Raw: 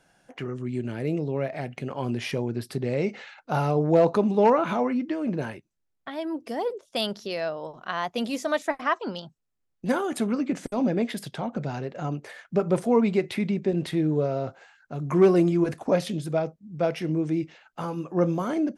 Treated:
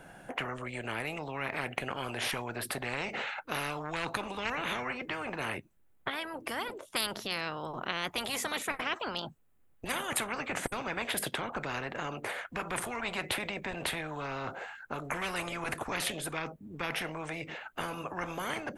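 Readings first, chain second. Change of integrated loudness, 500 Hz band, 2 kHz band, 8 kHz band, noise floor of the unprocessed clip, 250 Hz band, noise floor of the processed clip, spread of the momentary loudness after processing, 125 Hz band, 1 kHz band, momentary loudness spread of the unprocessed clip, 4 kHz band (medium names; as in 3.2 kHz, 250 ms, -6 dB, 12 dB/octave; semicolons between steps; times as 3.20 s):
-9.0 dB, -14.5 dB, +2.5 dB, +6.0 dB, -76 dBFS, -16.0 dB, -63 dBFS, 5 LU, -14.5 dB, -5.5 dB, 13 LU, +1.5 dB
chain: peaking EQ 5.3 kHz -14 dB 1.2 oct; spectrum-flattening compressor 10:1; trim -6 dB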